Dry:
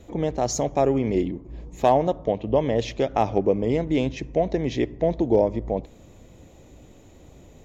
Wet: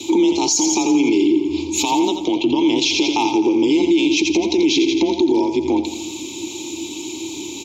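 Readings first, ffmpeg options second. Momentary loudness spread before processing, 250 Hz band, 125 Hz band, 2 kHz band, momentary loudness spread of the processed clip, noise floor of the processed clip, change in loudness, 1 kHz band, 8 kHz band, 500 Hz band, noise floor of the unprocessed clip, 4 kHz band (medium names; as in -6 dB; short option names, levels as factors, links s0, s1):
7 LU, +11.0 dB, -8.5 dB, +13.0 dB, 12 LU, -31 dBFS, +6.5 dB, +3.0 dB, no reading, +2.0 dB, -50 dBFS, +19.0 dB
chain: -filter_complex "[0:a]aecho=1:1:3.4:0.38,acompressor=threshold=0.0447:ratio=12,asplit=3[s0][s1][s2];[s0]bandpass=f=300:t=q:w=8,volume=1[s3];[s1]bandpass=f=870:t=q:w=8,volume=0.501[s4];[s2]bandpass=f=2240:t=q:w=8,volume=0.355[s5];[s3][s4][s5]amix=inputs=3:normalize=0,afreqshift=28,aexciter=amount=13.9:drive=9.9:freq=3100,aecho=1:1:85|170|255|340|425|510:0.355|0.188|0.0997|0.0528|0.028|0.0148,alimiter=level_in=50.1:limit=0.891:release=50:level=0:latency=1,volume=0.422"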